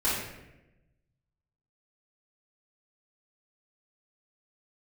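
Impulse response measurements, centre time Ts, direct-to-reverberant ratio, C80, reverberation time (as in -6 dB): 67 ms, -10.0 dB, 3.5 dB, 0.95 s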